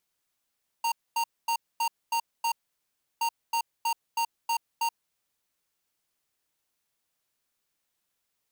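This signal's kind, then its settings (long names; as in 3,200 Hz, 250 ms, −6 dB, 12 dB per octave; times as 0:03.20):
beeps in groups square 925 Hz, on 0.08 s, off 0.24 s, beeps 6, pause 0.69 s, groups 2, −26.5 dBFS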